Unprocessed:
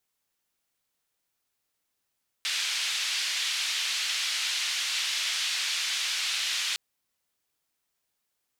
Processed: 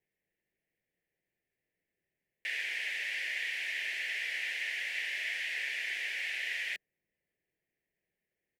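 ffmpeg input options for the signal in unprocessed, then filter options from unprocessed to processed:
-f lavfi -i "anoisesrc=color=white:duration=4.31:sample_rate=44100:seed=1,highpass=frequency=2800,lowpass=frequency=3700,volume=-12.7dB"
-af "firequalizer=gain_entry='entry(110,0);entry(170,6);entry(250,-2);entry(360,5);entry(610,0);entry(1200,-27);entry(1800,5);entry(3800,-19);entry(6400,-21);entry(14000,-15)':delay=0.05:min_phase=1"

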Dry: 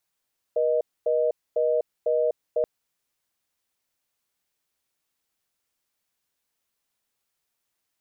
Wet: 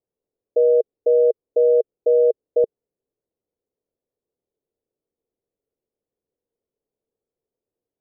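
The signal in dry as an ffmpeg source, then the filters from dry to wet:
-f lavfi -i "aevalsrc='0.075*(sin(2*PI*480*t)+sin(2*PI*620*t))*clip(min(mod(t,0.5),0.25-mod(t,0.5))/0.005,0,1)':duration=2.08:sample_rate=44100"
-af "lowpass=frequency=450:width_type=q:width=4"

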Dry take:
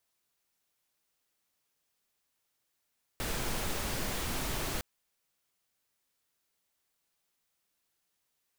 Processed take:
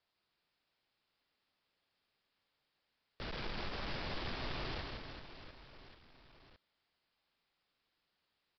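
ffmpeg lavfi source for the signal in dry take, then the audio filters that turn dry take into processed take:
-f lavfi -i "anoisesrc=color=pink:amplitude=0.102:duration=1.61:sample_rate=44100:seed=1"
-af "aresample=11025,asoftclip=type=tanh:threshold=-40dB,aresample=44100,aecho=1:1:160|384|697.6|1137|1751:0.631|0.398|0.251|0.158|0.1"

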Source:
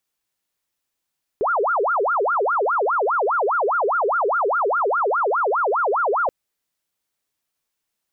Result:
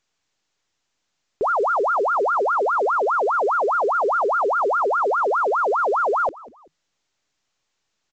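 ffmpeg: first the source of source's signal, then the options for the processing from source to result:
-f lavfi -i "aevalsrc='0.141*sin(2*PI*(906*t-514/(2*PI*4.9)*sin(2*PI*4.9*t)))':duration=4.88:sample_rate=44100"
-filter_complex "[0:a]asplit=3[link_01][link_02][link_03];[link_02]adelay=193,afreqshift=-85,volume=-21dB[link_04];[link_03]adelay=386,afreqshift=-170,volume=-30.9dB[link_05];[link_01][link_04][link_05]amix=inputs=3:normalize=0" -ar 16000 -c:a pcm_mulaw

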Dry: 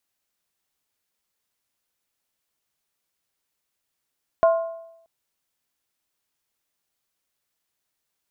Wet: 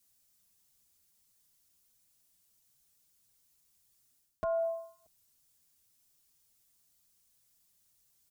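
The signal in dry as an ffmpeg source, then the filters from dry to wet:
-f lavfi -i "aevalsrc='0.266*pow(10,-3*t/0.83)*sin(2*PI*662*t)+0.0944*pow(10,-3*t/0.657)*sin(2*PI*1055.2*t)+0.0335*pow(10,-3*t/0.568)*sin(2*PI*1414*t)':duration=0.63:sample_rate=44100"
-filter_complex "[0:a]areverse,acompressor=threshold=-30dB:ratio=4,areverse,bass=frequency=250:gain=13,treble=frequency=4000:gain=13,asplit=2[link_01][link_02];[link_02]adelay=5.6,afreqshift=1.5[link_03];[link_01][link_03]amix=inputs=2:normalize=1"

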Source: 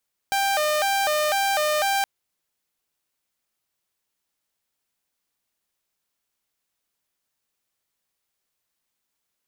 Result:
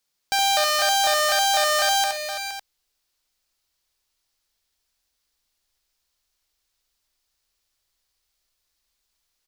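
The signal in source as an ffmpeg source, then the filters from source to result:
-f lavfi -i "aevalsrc='0.133*(2*mod((697.5*t+91.5/2*(0.5-abs(mod(2*t,1)-0.5))),1)-1)':duration=1.72:sample_rate=44100"
-filter_complex "[0:a]equalizer=frequency=4700:width=1.3:gain=7.5,asplit=2[link_01][link_02];[link_02]aecho=0:1:70|126|468|555:0.596|0.119|0.316|0.237[link_03];[link_01][link_03]amix=inputs=2:normalize=0,asubboost=boost=9.5:cutoff=53"

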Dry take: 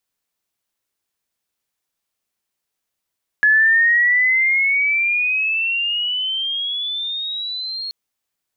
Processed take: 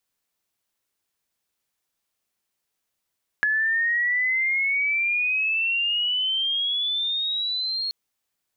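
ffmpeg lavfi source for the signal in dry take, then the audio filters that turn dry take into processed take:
-f lavfi -i "aevalsrc='pow(10,(-10-14.5*t/4.48)/20)*sin(2*PI*1700*4.48/log(4300/1700)*(exp(log(4300/1700)*t/4.48)-1))':duration=4.48:sample_rate=44100"
-af "acompressor=threshold=-22dB:ratio=6"

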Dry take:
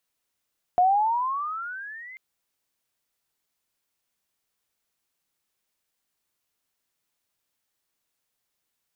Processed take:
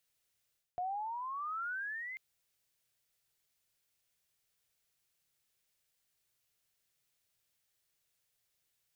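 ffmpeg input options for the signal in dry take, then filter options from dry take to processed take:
-f lavfi -i "aevalsrc='pow(10,(-15-25*t/1.39)/20)*sin(2*PI*707*1.39/(19*log(2)/12)*(exp(19*log(2)/12*t/1.39)-1))':duration=1.39:sample_rate=44100"
-af "areverse,acompressor=threshold=-32dB:ratio=8,areverse,equalizer=frequency=125:width_type=o:width=1:gain=5,equalizer=frequency=250:width_type=o:width=1:gain=-9,equalizer=frequency=1000:width_type=o:width=1:gain=-7"

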